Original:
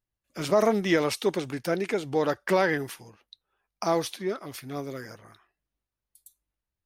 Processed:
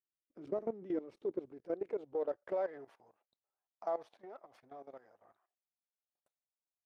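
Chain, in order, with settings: partial rectifier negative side -7 dB; band-pass sweep 330 Hz -> 700 Hz, 0.95–3.10 s; level held to a coarse grid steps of 16 dB; trim -1 dB

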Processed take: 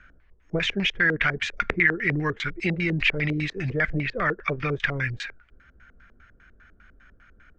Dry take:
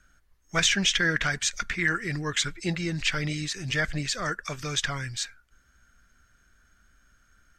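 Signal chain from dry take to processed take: 3.90–4.73 s: low-pass 3.5 kHz 12 dB/octave; compression 3:1, threshold -31 dBFS, peak gain reduction 9.5 dB; LFO low-pass square 5 Hz 450–2300 Hz; trim +7 dB

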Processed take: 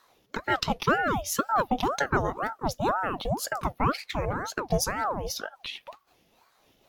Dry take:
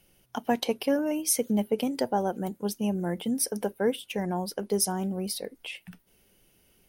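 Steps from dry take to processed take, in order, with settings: sawtooth pitch modulation +2.5 st, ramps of 361 ms; resonant high shelf 6.9 kHz -7.5 dB, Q 1.5; ring modulator with a swept carrier 690 Hz, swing 65%, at 2 Hz; trim +5 dB

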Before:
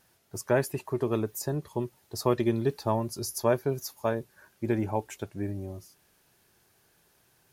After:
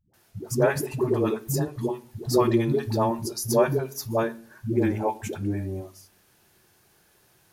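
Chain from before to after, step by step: phase dispersion highs, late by 137 ms, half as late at 330 Hz; on a send: reverberation RT60 0.45 s, pre-delay 3 ms, DRR 9.5 dB; on the sum: trim +4 dB

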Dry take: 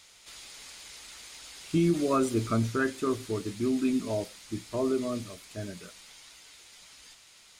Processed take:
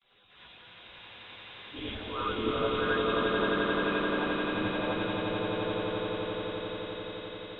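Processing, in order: harmonic-percussive separation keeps percussive; Chebyshev low-pass 3.8 kHz, order 10; gate with hold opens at -55 dBFS; peaking EQ 2.2 kHz -4.5 dB 1.2 oct; transient shaper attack -12 dB, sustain +5 dB; echo with a slow build-up 87 ms, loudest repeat 8, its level -4.5 dB; gated-style reverb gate 130 ms rising, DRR -7 dB; trim -2 dB

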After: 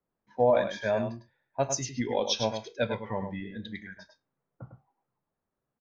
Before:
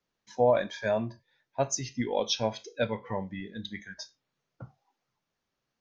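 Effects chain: level-controlled noise filter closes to 1.1 kHz, open at -26 dBFS; on a send: delay 103 ms -7.5 dB

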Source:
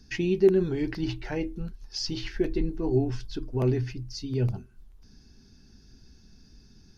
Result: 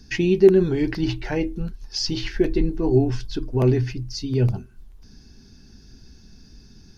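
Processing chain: band-stop 1.3 kHz, Q 29; trim +6.5 dB

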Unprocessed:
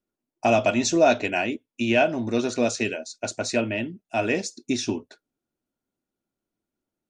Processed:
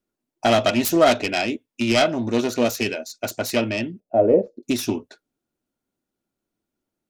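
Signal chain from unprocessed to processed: self-modulated delay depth 0.19 ms; 4.00–4.63 s: resonant low-pass 540 Hz, resonance Q 4.9; trim +3 dB

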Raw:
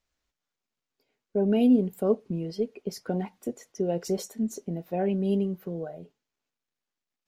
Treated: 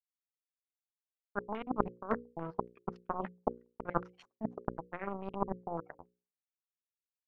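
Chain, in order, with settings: random holes in the spectrogram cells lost 29%; reverse; compression 10:1, threshold -33 dBFS, peak gain reduction 15.5 dB; reverse; power-law waveshaper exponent 3; hum notches 60/120/180/240/300/360/420/480/540 Hz; step-sequenced low-pass 7.1 Hz 790–2600 Hz; trim +12 dB

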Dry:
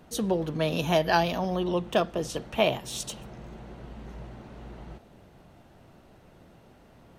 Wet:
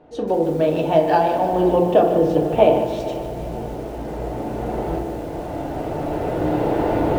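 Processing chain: recorder AGC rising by 7.3 dB/s; 1.53–3.66 s: bass shelf 420 Hz +7.5 dB; low-pass 3.1 kHz 12 dB/octave; high-order bell 530 Hz +9 dB; echo that smears into a reverb 473 ms, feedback 53%, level -15.5 dB; FDN reverb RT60 0.81 s, low-frequency decay 1.45×, high-frequency decay 0.4×, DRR 1.5 dB; bit-crushed delay 150 ms, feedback 55%, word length 6-bit, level -10.5 dB; trim -3 dB

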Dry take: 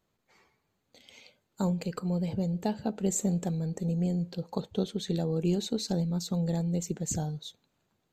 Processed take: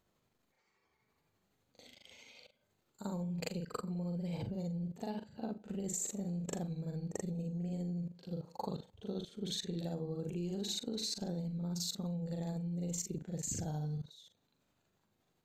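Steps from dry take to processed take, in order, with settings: level held to a coarse grid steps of 20 dB; granular stretch 1.9×, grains 170 ms; trim +3 dB

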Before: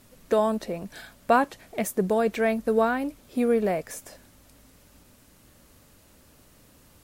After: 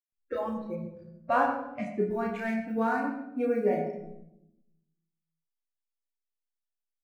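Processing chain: low-pass 2.6 kHz 12 dB/octave; in parallel at -11 dB: bit crusher 7-bit; on the sum: doubling 31 ms -3.5 dB; 0.75–1.83 s: level-controlled noise filter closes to 1.9 kHz, open at -17 dBFS; chord resonator C#2 minor, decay 0.21 s; hysteresis with a dead band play -45.5 dBFS; spectral noise reduction 24 dB; on a send at -5.5 dB: reverberation RT60 0.85 s, pre-delay 47 ms; on the sum: trim +1.5 dB

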